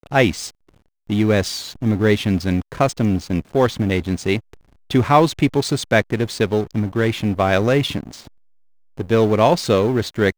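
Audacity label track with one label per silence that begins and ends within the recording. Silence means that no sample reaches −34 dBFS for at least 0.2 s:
0.500000	1.100000	silence
4.540000	4.900000	silence
8.270000	8.970000	silence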